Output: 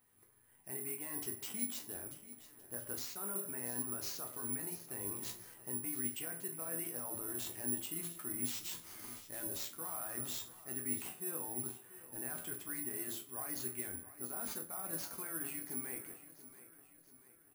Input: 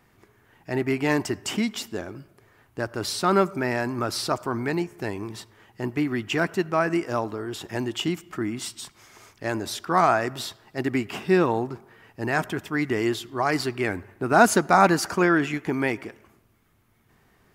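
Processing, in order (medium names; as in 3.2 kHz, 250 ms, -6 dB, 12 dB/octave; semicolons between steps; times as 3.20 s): Doppler pass-by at 7.26 s, 8 m/s, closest 11 m; de-hum 57.31 Hz, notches 11; reverse; compression 6:1, threshold -40 dBFS, peak gain reduction 20 dB; reverse; peak limiter -35.5 dBFS, peak gain reduction 8 dB; chord resonator E2 minor, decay 0.27 s; on a send: feedback delay 684 ms, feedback 50%, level -15.5 dB; on the sum: careless resampling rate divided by 4×, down none, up zero stuff; trim +9 dB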